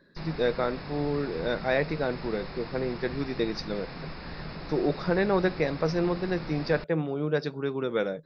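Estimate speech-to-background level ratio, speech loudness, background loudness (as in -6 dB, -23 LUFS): 11.0 dB, -29.5 LUFS, -40.5 LUFS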